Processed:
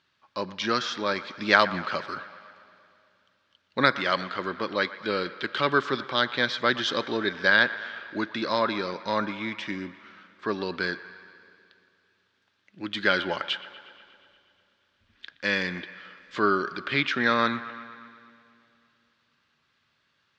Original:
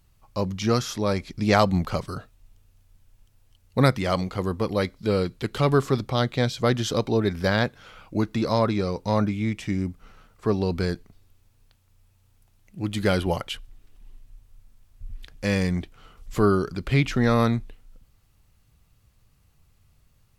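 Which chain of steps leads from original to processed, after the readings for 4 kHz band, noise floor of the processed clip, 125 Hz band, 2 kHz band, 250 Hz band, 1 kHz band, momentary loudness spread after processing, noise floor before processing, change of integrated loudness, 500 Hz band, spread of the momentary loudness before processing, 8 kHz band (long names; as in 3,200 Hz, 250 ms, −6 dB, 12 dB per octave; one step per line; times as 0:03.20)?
+4.0 dB, −71 dBFS, −16.0 dB, +7.5 dB, −7.0 dB, +1.0 dB, 16 LU, −62 dBFS, −1.5 dB, −4.5 dB, 10 LU, −8.0 dB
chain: loudspeaker in its box 370–4,900 Hz, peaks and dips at 460 Hz −7 dB, 740 Hz −9 dB, 1,600 Hz +9 dB, 3,500 Hz +5 dB
delay with a band-pass on its return 119 ms, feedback 68%, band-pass 1,400 Hz, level −14.5 dB
four-comb reverb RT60 2.8 s, DRR 19.5 dB
level +1.5 dB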